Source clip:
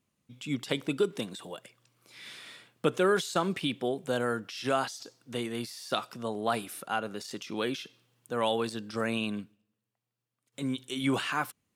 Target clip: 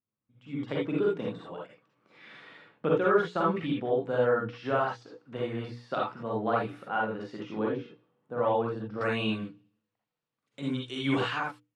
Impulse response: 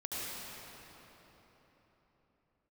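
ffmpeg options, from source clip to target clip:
-filter_complex "[0:a]bandreject=f=60:t=h:w=6,bandreject=f=120:t=h:w=6,bandreject=f=180:t=h:w=6,bandreject=f=240:t=h:w=6,bandreject=f=300:t=h:w=6,bandreject=f=360:t=h:w=6,bandreject=f=420:t=h:w=6,bandreject=f=480:t=h:w=6[s0];[1:a]atrim=start_sample=2205,atrim=end_sample=6615,asetrate=74970,aresample=44100[s1];[s0][s1]afir=irnorm=-1:irlink=0,dynaudnorm=f=160:g=7:m=6.31,asetnsamples=n=441:p=0,asendcmd='7.59 lowpass f 1100;9.01 lowpass f 3900',lowpass=1800,volume=0.422"

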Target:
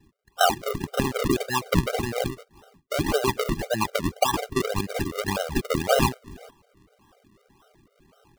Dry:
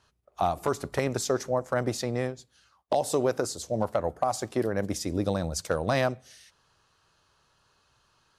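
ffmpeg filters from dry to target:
-af "tiltshelf=f=650:g=-7,acrusher=samples=38:mix=1:aa=0.000001:lfo=1:lforange=38:lforate=1.8,afftfilt=real='re*gt(sin(2*PI*4*pts/sr)*(1-2*mod(floor(b*sr/1024/400),2)),0)':imag='im*gt(sin(2*PI*4*pts/sr)*(1-2*mod(floor(b*sr/1024/400),2)),0)':win_size=1024:overlap=0.75,volume=2.24"

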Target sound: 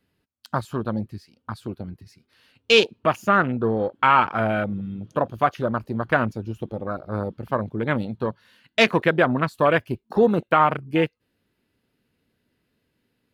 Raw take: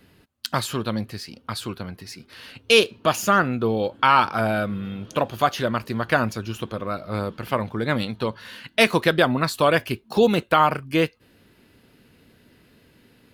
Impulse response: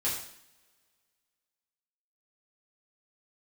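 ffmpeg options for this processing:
-af "afwtdn=0.0398"

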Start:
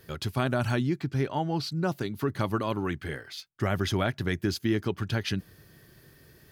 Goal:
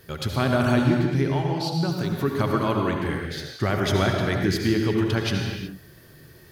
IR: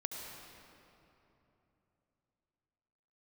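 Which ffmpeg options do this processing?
-filter_complex "[0:a]asettb=1/sr,asplit=3[s0][s1][s2];[s0]atrim=end=1.314[s3];[s1]atrim=start=1.31:end=2.13,asetpts=PTS-STARTPTS,afade=t=in:d=0.004:c=qsin,afade=t=out:st=0.816:d=0.004:c=qsin,acrossover=split=150|3000[s4][s5][s6];[s5]acompressor=threshold=0.0316:ratio=6[s7];[s4][s7][s6]amix=inputs=3:normalize=0[s8];[s2]atrim=start=2.126[s9];[s3][s8]acrossfade=d=0.004:c1=hsin:c2=qsin[s10];[s10][s9]acrossfade=d=0.004:c1=qsin:c2=hsin[s11];[1:a]atrim=start_sample=2205,afade=t=out:st=0.43:d=0.01,atrim=end_sample=19404[s12];[s11][s12]afir=irnorm=-1:irlink=0,volume=2"

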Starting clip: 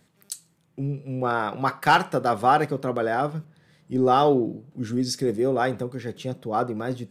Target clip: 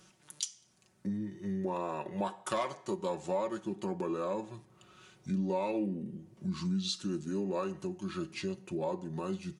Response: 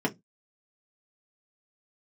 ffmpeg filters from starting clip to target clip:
-filter_complex "[0:a]bass=f=250:g=-6,treble=f=4000:g=6,aecho=1:1:4:0.6,acompressor=threshold=0.0141:ratio=3,asplit=2[s0][s1];[1:a]atrim=start_sample=2205[s2];[s1][s2]afir=irnorm=-1:irlink=0,volume=0.0398[s3];[s0][s3]amix=inputs=2:normalize=0,asetrate=32667,aresample=44100"

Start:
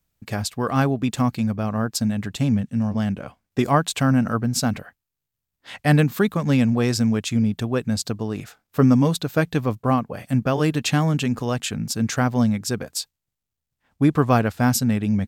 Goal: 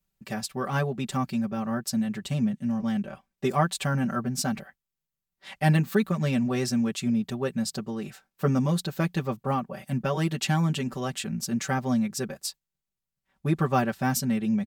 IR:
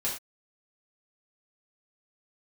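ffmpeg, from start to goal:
-af "aecho=1:1:5.4:0.97,asetrate=45938,aresample=44100,volume=0.398"

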